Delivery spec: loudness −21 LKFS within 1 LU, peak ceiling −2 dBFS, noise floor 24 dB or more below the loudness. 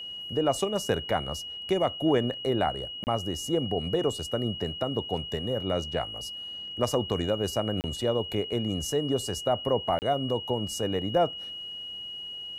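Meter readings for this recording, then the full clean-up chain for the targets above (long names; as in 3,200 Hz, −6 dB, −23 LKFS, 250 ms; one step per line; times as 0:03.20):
number of dropouts 3; longest dropout 29 ms; interfering tone 2,900 Hz; level of the tone −36 dBFS; integrated loudness −29.0 LKFS; sample peak −11.0 dBFS; target loudness −21.0 LKFS
→ repair the gap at 0:03.04/0:07.81/0:09.99, 29 ms
notch filter 2,900 Hz, Q 30
level +8 dB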